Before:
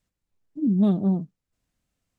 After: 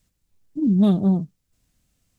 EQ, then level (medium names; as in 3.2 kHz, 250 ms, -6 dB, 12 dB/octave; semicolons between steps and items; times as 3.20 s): bass shelf 310 Hz +9 dB; dynamic bell 230 Hz, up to -6 dB, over -27 dBFS, Q 0.79; treble shelf 2.7 kHz +10 dB; +2.5 dB